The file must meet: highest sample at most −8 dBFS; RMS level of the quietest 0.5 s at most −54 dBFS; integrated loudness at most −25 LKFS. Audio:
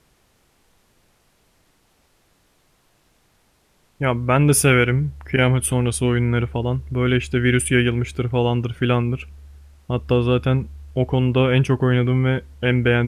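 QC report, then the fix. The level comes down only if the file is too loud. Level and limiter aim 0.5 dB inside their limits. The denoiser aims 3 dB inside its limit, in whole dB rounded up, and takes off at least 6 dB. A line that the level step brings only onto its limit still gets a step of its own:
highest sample −5.0 dBFS: out of spec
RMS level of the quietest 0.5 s −61 dBFS: in spec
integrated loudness −19.5 LKFS: out of spec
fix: level −6 dB

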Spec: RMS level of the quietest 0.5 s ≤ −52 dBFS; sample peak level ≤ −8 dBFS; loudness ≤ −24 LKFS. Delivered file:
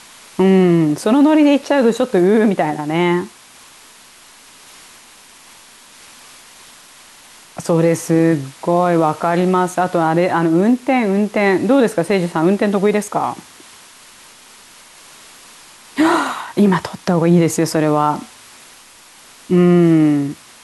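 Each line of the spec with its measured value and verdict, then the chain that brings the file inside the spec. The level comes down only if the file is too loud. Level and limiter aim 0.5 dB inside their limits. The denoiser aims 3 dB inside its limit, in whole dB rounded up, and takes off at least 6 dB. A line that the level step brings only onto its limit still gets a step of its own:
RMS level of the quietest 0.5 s −44 dBFS: out of spec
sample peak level −4.0 dBFS: out of spec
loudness −15.0 LKFS: out of spec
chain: level −9.5 dB

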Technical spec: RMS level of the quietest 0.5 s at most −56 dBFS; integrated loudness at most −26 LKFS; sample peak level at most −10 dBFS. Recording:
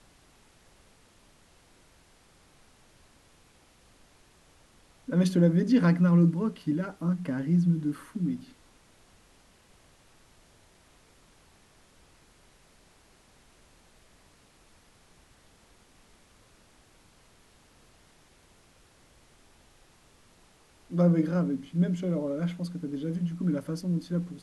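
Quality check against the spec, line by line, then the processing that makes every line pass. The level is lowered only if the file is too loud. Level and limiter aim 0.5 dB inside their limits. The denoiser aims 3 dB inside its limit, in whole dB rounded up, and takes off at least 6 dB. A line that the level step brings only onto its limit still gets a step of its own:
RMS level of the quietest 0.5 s −60 dBFS: in spec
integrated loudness −27.5 LKFS: in spec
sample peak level −11.0 dBFS: in spec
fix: no processing needed

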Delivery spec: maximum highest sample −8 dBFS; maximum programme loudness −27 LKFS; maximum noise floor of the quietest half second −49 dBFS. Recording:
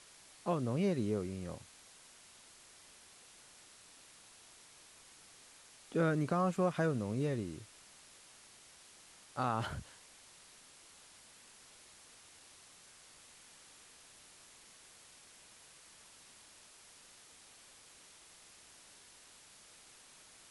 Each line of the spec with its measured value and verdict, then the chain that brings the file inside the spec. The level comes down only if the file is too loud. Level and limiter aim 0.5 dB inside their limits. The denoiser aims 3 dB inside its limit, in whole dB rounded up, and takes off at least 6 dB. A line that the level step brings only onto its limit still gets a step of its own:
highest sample −20.5 dBFS: in spec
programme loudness −36.0 LKFS: in spec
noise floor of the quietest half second −59 dBFS: in spec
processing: no processing needed

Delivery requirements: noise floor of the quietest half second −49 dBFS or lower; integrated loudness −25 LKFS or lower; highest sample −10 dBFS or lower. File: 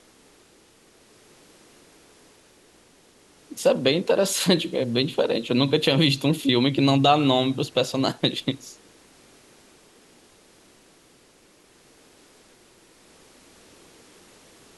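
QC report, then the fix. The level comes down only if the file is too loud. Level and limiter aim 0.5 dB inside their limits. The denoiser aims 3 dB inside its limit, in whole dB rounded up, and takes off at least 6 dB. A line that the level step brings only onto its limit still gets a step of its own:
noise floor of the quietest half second −56 dBFS: in spec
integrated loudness −21.5 LKFS: out of spec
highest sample −4.5 dBFS: out of spec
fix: level −4 dB
brickwall limiter −10.5 dBFS

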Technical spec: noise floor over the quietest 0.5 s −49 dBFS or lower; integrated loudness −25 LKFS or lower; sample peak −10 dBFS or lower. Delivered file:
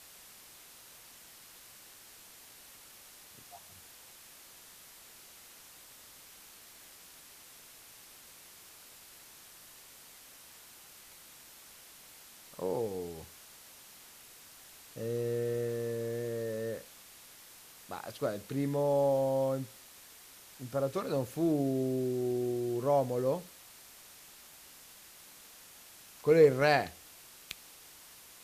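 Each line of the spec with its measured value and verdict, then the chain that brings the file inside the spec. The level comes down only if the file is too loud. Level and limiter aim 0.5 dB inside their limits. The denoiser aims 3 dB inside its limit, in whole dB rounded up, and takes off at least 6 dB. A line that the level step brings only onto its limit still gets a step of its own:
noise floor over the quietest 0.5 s −54 dBFS: in spec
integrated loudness −32.0 LKFS: in spec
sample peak −12.0 dBFS: in spec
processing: no processing needed

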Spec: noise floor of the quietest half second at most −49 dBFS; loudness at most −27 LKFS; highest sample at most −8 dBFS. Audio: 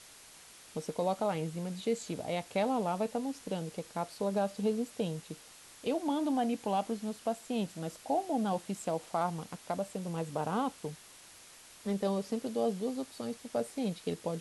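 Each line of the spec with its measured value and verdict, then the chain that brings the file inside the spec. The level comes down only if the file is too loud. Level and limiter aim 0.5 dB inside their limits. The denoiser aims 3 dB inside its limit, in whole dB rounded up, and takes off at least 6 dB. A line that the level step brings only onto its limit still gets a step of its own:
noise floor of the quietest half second −55 dBFS: in spec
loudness −35.0 LKFS: in spec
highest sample −19.5 dBFS: in spec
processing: no processing needed

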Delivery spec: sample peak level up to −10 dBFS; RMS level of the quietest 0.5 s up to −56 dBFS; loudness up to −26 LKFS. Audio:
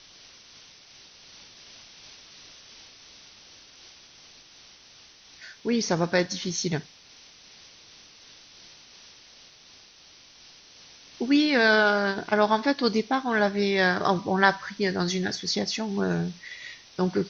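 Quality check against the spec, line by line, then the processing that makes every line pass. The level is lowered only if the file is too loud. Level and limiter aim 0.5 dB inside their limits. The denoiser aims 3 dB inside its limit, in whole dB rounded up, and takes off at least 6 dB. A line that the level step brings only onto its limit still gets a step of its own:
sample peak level −5.5 dBFS: out of spec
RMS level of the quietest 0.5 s −53 dBFS: out of spec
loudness −24.5 LKFS: out of spec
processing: broadband denoise 6 dB, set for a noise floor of −53 dBFS
level −2 dB
brickwall limiter −10.5 dBFS

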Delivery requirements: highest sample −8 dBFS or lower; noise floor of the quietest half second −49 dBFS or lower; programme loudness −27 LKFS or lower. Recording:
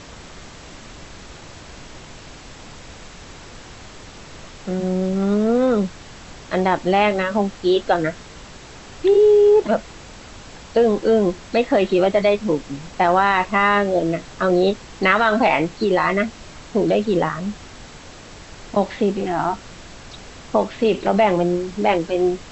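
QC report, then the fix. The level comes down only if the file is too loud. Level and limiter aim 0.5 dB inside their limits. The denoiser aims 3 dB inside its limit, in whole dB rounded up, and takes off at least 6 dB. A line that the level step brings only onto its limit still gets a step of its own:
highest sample −3.0 dBFS: out of spec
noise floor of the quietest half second −40 dBFS: out of spec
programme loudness −19.0 LKFS: out of spec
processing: broadband denoise 6 dB, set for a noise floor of −40 dBFS
level −8.5 dB

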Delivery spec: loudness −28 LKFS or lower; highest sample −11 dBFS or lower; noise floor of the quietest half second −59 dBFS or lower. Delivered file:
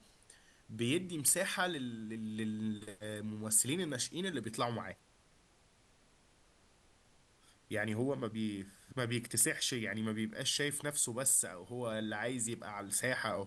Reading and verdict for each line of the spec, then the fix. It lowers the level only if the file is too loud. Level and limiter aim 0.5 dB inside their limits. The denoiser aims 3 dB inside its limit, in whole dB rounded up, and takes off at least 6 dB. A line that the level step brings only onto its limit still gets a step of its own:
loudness −35.5 LKFS: in spec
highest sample −16.5 dBFS: in spec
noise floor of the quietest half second −68 dBFS: in spec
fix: no processing needed

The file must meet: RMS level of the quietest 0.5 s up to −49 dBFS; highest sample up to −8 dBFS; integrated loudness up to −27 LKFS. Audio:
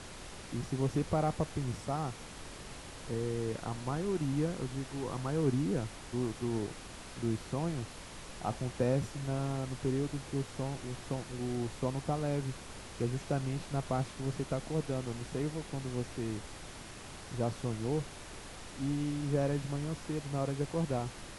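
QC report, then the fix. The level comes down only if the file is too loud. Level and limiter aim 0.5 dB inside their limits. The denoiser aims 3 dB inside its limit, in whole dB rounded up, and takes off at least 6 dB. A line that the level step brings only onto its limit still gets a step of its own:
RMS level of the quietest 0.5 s −47 dBFS: out of spec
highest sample −18.5 dBFS: in spec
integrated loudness −36.0 LKFS: in spec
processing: broadband denoise 6 dB, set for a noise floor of −47 dBFS

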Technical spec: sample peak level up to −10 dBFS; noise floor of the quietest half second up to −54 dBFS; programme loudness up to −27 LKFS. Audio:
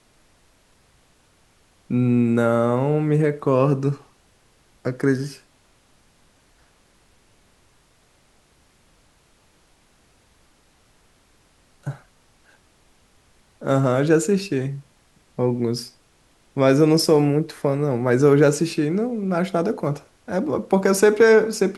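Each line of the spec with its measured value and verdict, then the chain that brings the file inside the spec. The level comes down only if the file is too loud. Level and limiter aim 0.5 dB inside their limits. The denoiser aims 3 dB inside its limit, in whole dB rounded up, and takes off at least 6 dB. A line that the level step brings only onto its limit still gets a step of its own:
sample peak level −3.5 dBFS: out of spec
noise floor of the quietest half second −59 dBFS: in spec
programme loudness −20.0 LKFS: out of spec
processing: level −7.5 dB

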